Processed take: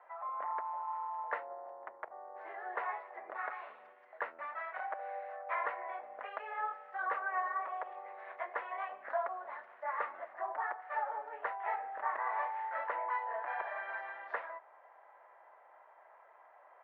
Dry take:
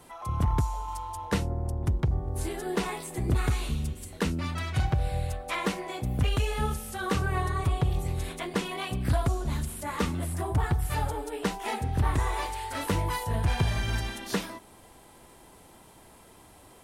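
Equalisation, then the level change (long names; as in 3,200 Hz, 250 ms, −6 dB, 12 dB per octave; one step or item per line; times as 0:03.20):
elliptic band-pass filter 590–1,900 Hz, stop band 70 dB
−1.5 dB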